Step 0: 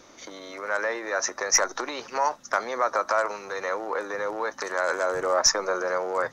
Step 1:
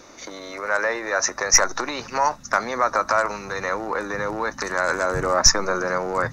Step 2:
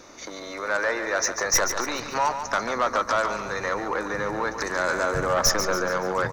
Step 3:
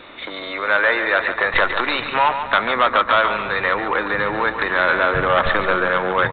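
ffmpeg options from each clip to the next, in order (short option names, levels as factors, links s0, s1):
-af "bandreject=f=3200:w=8.2,asubboost=boost=8.5:cutoff=170,volume=1.88"
-af "asoftclip=type=tanh:threshold=0.2,aecho=1:1:142|284|426|568|710|852:0.355|0.177|0.0887|0.0444|0.0222|0.0111,volume=0.891"
-af "crystalizer=i=6.5:c=0,aresample=8000,aresample=44100,volume=1.58"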